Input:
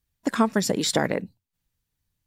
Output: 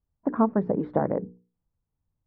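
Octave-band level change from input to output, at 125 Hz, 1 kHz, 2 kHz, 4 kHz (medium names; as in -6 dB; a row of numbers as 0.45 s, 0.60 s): -0.5 dB, -1.5 dB, -14.5 dB, under -40 dB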